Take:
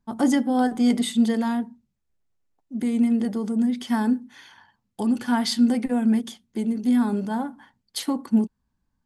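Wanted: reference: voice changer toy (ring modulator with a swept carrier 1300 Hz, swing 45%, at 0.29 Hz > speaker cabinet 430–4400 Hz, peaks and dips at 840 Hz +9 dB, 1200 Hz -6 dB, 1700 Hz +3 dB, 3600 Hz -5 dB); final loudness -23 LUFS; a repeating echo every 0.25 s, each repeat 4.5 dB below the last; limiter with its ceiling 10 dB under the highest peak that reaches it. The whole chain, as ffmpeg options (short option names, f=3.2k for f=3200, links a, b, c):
-af "alimiter=limit=-20.5dB:level=0:latency=1,aecho=1:1:250|500|750|1000|1250|1500|1750|2000|2250:0.596|0.357|0.214|0.129|0.0772|0.0463|0.0278|0.0167|0.01,aeval=exprs='val(0)*sin(2*PI*1300*n/s+1300*0.45/0.29*sin(2*PI*0.29*n/s))':c=same,highpass=430,equalizer=f=840:t=q:w=4:g=9,equalizer=f=1.2k:t=q:w=4:g=-6,equalizer=f=1.7k:t=q:w=4:g=3,equalizer=f=3.6k:t=q:w=4:g=-5,lowpass=f=4.4k:w=0.5412,lowpass=f=4.4k:w=1.3066,volume=4.5dB"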